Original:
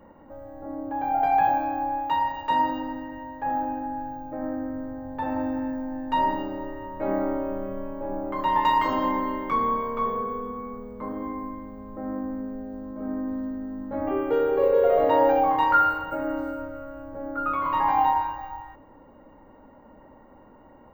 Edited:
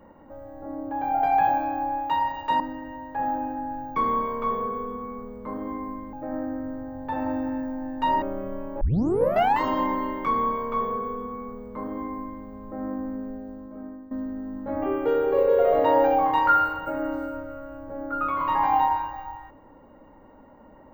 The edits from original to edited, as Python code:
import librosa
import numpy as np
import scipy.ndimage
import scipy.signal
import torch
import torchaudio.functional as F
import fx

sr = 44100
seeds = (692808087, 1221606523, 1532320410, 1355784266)

y = fx.edit(x, sr, fx.cut(start_s=2.6, length_s=0.27),
    fx.cut(start_s=6.32, length_s=1.15),
    fx.tape_start(start_s=8.06, length_s=0.8),
    fx.duplicate(start_s=9.51, length_s=2.17, to_s=4.23),
    fx.fade_out_to(start_s=12.55, length_s=0.81, floor_db=-18.0), tone=tone)